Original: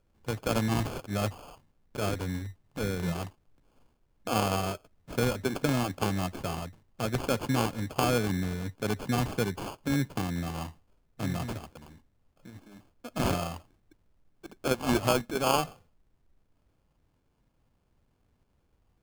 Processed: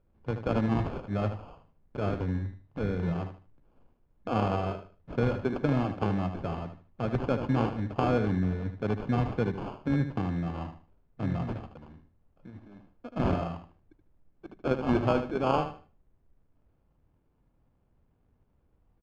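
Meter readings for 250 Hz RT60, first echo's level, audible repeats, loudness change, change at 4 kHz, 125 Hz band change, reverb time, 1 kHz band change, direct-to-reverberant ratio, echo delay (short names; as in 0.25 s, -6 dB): none, -9.5 dB, 3, +0.5 dB, -10.5 dB, +2.0 dB, none, -1.0 dB, none, 76 ms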